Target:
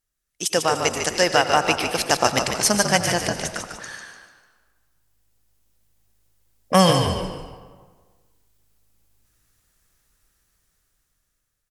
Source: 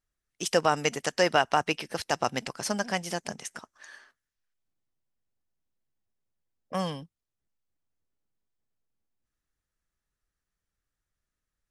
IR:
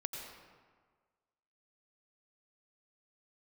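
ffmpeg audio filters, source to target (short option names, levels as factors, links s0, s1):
-filter_complex "[0:a]asettb=1/sr,asplit=3[s0][s1][s2];[s0]atrim=end=3.064[s3];[s1]atrim=start=3.06:end=3.9,asetpts=PTS-STARTPTS,afade=t=in:d=0.004:c=qsin,afade=t=out:st=0.836:d=0.004:c=qsin,acrossover=split=4800[s4][s5];[s5]acompressor=threshold=0.00501:ratio=4:attack=1:release=60[s6];[s4][s6]amix=inputs=2:normalize=0[s7];[s2]atrim=start=3.896[s8];[s3][s7]acrossfade=d=0.004:c1=hsin:c2=qsin[s9];[s9][s8]acrossfade=d=0.004:c1=qsin:c2=hsin,aemphasis=mode=production:type=cd,dynaudnorm=f=700:g=5:m=5.31,asplit=5[s10][s11][s12][s13][s14];[s11]adelay=148,afreqshift=-53,volume=0.473[s15];[s12]adelay=296,afreqshift=-106,volume=0.18[s16];[s13]adelay=444,afreqshift=-159,volume=0.0684[s17];[s14]adelay=592,afreqshift=-212,volume=0.026[s18];[s10][s15][s16][s17][s18]amix=inputs=5:normalize=0,asplit=2[s19][s20];[1:a]atrim=start_sample=2205[s21];[s20][s21]afir=irnorm=-1:irlink=0,volume=0.75[s22];[s19][s22]amix=inputs=2:normalize=0,volume=0.794"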